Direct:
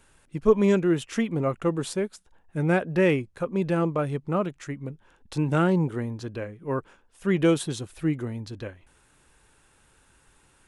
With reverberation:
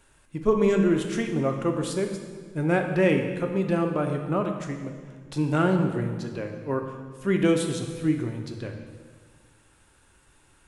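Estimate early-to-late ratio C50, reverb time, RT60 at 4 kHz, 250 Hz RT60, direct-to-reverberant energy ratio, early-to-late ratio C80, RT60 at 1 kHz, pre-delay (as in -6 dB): 6.0 dB, 1.6 s, 1.4 s, 1.9 s, 4.0 dB, 7.5 dB, 1.5 s, 3 ms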